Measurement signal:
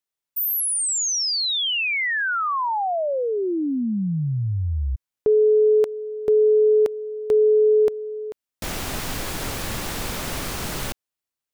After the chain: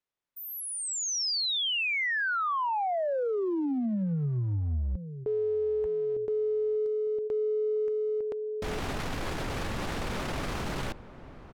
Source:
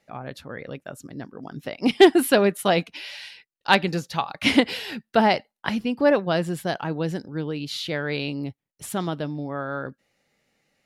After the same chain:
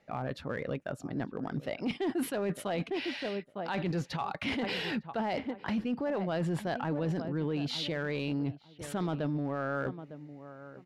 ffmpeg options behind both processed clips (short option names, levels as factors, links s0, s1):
-filter_complex "[0:a]aemphasis=mode=reproduction:type=75fm,asplit=2[s0][s1];[s1]adelay=905,lowpass=f=1200:p=1,volume=0.119,asplit=2[s2][s3];[s3]adelay=905,lowpass=f=1200:p=1,volume=0.22[s4];[s0][s2][s4]amix=inputs=3:normalize=0,areverse,acompressor=threshold=0.0398:ratio=12:attack=0.16:release=59:knee=1:detection=peak,areverse,volume=1.19"